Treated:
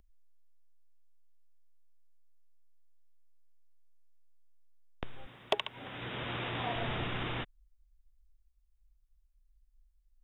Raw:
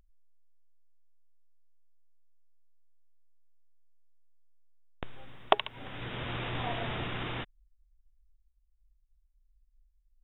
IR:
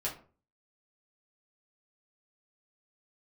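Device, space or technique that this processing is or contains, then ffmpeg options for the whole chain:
one-band saturation: -filter_complex "[0:a]acrossover=split=380|2600[link_01][link_02][link_03];[link_02]asoftclip=type=tanh:threshold=-23.5dB[link_04];[link_01][link_04][link_03]amix=inputs=3:normalize=0,asettb=1/sr,asplit=3[link_05][link_06][link_07];[link_05]atrim=end=5.264[link_08];[link_06]atrim=start=5.26:end=6.76,asetpts=PTS-STARTPTS,afade=type=in:duration=0.004:curve=qsin,afade=type=out:start_time=1.496:duration=0.004:curve=qsin,highpass=frequency=130:poles=1[link_09];[link_07]atrim=start=6.756[link_10];[link_08][link_09]acrossfade=duration=0.004:curve1=hsin:curve2=qsin[link_11];[link_11][link_10]acrossfade=duration=0.004:curve1=qsin:curve2=hsin"

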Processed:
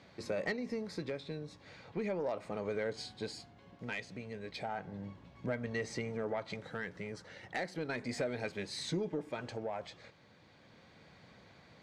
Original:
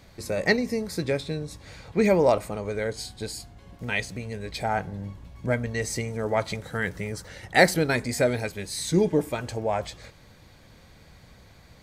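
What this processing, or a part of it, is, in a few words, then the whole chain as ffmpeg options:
AM radio: -filter_complex "[0:a]highpass=150,lowpass=4300,acompressor=threshold=-27dB:ratio=6,asoftclip=type=tanh:threshold=-21dB,tremolo=f=0.35:d=0.38,asettb=1/sr,asplit=3[link_01][link_02][link_03];[link_01]atrim=end=5.774[link_04];[link_02]atrim=start=5.77:end=6.5,asetpts=PTS-STARTPTS,afade=type=in:duration=0.004:curve=qsin,afade=type=out:start_time=0.726:duration=0.004:curve=qsin,highshelf=frequency=5400:gain=-5.5[link_05];[link_03]atrim=start=6.496[link_06];[link_04][link_05]acrossfade=duration=0.004:curve1=hsin:curve2=qsin[link_07];[link_07][link_06]acrossfade=duration=0.004:curve1=qsin:curve2=hsin,volume=-3.5dB"

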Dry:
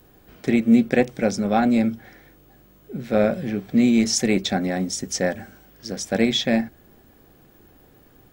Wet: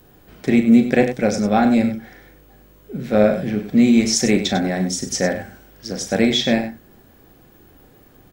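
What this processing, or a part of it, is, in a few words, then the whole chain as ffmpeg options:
slapback doubling: -filter_complex "[0:a]asplit=3[link_01][link_02][link_03];[link_02]adelay=38,volume=-9dB[link_04];[link_03]adelay=98,volume=-10.5dB[link_05];[link_01][link_04][link_05]amix=inputs=3:normalize=0,volume=2.5dB"

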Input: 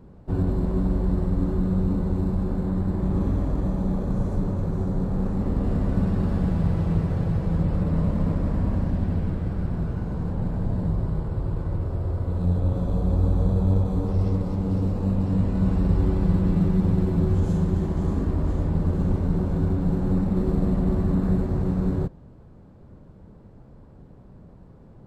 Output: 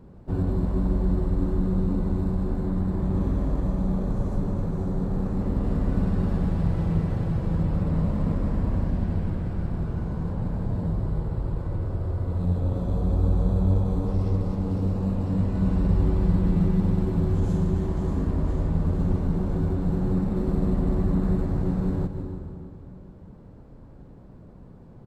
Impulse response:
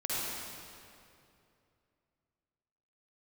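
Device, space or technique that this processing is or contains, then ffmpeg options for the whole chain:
ducked reverb: -filter_complex "[0:a]asplit=3[link_01][link_02][link_03];[1:a]atrim=start_sample=2205[link_04];[link_02][link_04]afir=irnorm=-1:irlink=0[link_05];[link_03]apad=whole_len=1105312[link_06];[link_05][link_06]sidechaincompress=threshold=-38dB:ratio=8:attack=16:release=114,volume=-12dB[link_07];[link_01][link_07]amix=inputs=2:normalize=0,aecho=1:1:155|310|465|620|775|930:0.282|0.147|0.0762|0.0396|0.0206|0.0107,volume=-2dB"

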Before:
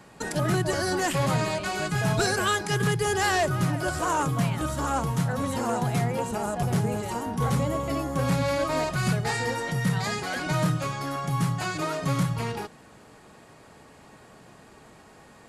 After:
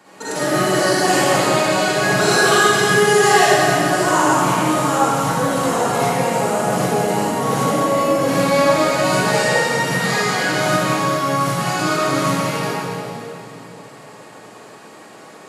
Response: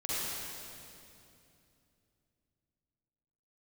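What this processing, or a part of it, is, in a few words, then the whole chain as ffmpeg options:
stairwell: -filter_complex "[0:a]highpass=280[link_01];[1:a]atrim=start_sample=2205[link_02];[link_01][link_02]afir=irnorm=-1:irlink=0,volume=5.5dB"

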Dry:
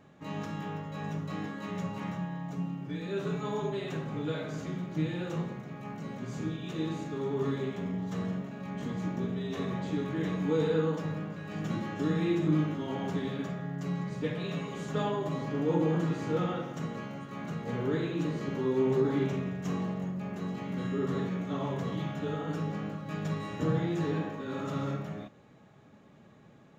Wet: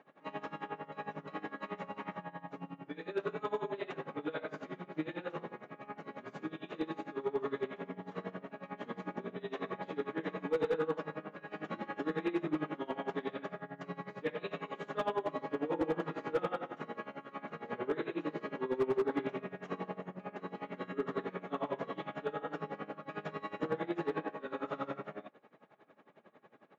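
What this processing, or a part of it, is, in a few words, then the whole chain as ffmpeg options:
helicopter radio: -af "highpass=390,lowpass=2500,aeval=exprs='val(0)*pow(10,-20*(0.5-0.5*cos(2*PI*11*n/s))/20)':channel_layout=same,asoftclip=type=hard:threshold=-30dB,volume=5dB"

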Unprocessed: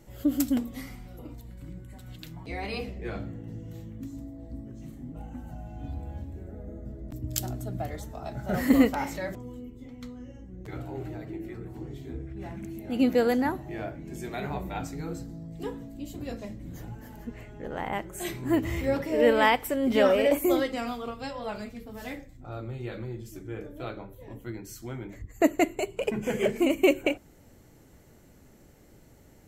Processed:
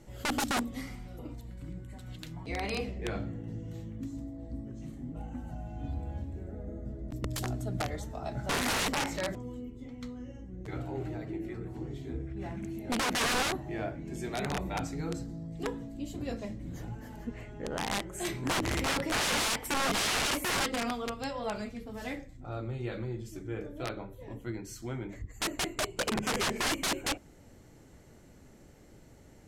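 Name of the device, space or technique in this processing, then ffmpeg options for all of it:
overflowing digital effects unit: -af "aeval=exprs='(mod(15.8*val(0)+1,2)-1)/15.8':channel_layout=same,lowpass=9900"

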